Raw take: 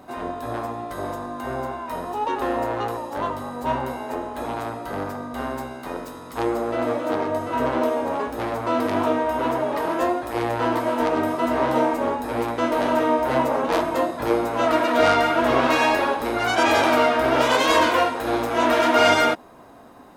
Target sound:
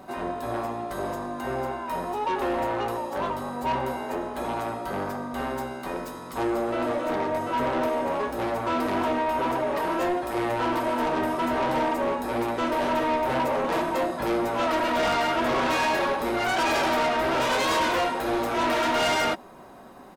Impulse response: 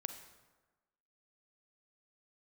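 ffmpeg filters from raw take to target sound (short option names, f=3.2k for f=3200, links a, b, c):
-af "aecho=1:1:5.3:0.36,asoftclip=type=tanh:threshold=-20.5dB"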